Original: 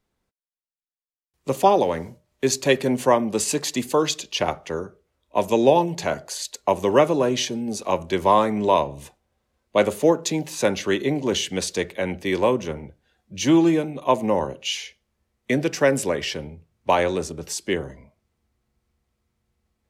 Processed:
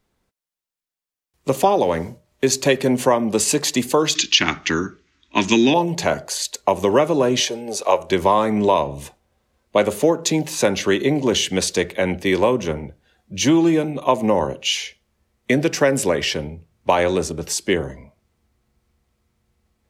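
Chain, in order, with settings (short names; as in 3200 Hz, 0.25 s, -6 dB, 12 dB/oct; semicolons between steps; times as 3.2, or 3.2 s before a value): 4.15–5.74 EQ curve 130 Hz 0 dB, 310 Hz +10 dB, 530 Hz -15 dB, 1700 Hz +12 dB, 6600 Hz +10 dB, 13000 Hz -30 dB; compressor 3:1, threshold -19 dBFS, peak gain reduction 7 dB; 7.4–8.1 resonant low shelf 340 Hz -11 dB, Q 1.5; gain +6 dB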